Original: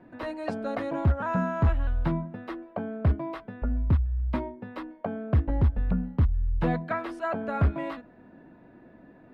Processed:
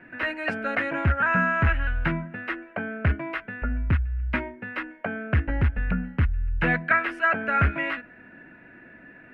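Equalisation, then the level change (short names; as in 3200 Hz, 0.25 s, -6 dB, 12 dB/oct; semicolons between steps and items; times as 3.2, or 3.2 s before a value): band shelf 2000 Hz +16 dB 1.3 oct; 0.0 dB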